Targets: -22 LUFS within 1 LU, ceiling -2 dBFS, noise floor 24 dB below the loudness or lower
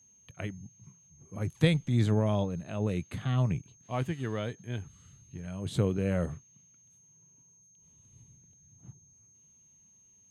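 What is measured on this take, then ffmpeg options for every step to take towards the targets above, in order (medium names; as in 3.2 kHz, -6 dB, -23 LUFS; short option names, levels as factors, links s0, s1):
steady tone 6.4 kHz; tone level -59 dBFS; loudness -31.5 LUFS; peak level -12.0 dBFS; loudness target -22.0 LUFS
-> -af "bandreject=f=6400:w=30"
-af "volume=2.99"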